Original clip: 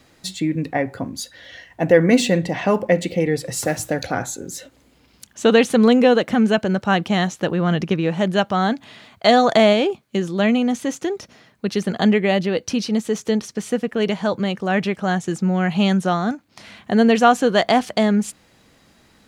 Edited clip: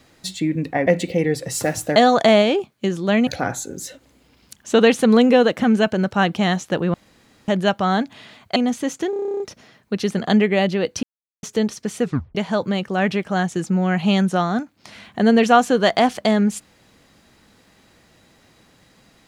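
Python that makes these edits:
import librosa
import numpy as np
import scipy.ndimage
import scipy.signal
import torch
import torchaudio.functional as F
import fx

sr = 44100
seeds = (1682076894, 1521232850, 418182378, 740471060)

y = fx.edit(x, sr, fx.cut(start_s=0.87, length_s=2.02),
    fx.room_tone_fill(start_s=7.65, length_s=0.54),
    fx.move(start_s=9.27, length_s=1.31, to_s=3.98),
    fx.stutter(start_s=11.12, slice_s=0.03, count=11),
    fx.silence(start_s=12.75, length_s=0.4),
    fx.tape_stop(start_s=13.74, length_s=0.33), tone=tone)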